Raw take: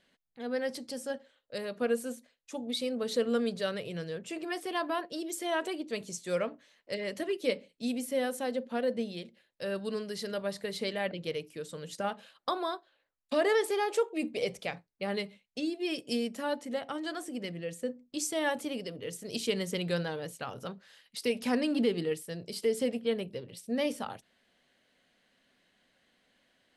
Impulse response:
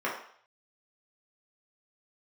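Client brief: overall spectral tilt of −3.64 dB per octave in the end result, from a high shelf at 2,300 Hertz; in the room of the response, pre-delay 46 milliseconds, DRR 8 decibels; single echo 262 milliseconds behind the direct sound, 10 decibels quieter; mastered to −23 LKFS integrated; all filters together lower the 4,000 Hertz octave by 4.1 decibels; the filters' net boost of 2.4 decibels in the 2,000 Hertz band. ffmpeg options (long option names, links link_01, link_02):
-filter_complex "[0:a]equalizer=frequency=2000:width_type=o:gain=6,highshelf=frequency=2300:gain=-4.5,equalizer=frequency=4000:width_type=o:gain=-4,aecho=1:1:262:0.316,asplit=2[link_01][link_02];[1:a]atrim=start_sample=2205,adelay=46[link_03];[link_02][link_03]afir=irnorm=-1:irlink=0,volume=-18dB[link_04];[link_01][link_04]amix=inputs=2:normalize=0,volume=10dB"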